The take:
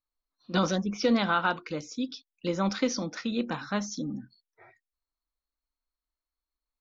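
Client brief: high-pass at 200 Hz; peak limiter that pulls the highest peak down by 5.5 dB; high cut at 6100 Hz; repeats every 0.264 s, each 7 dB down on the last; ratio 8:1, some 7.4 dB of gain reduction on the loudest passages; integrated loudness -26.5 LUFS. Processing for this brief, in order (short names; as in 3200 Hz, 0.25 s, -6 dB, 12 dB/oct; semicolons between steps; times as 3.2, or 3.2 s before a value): HPF 200 Hz; LPF 6100 Hz; compressor 8:1, threshold -28 dBFS; limiter -24.5 dBFS; feedback echo 0.264 s, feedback 45%, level -7 dB; gain +9.5 dB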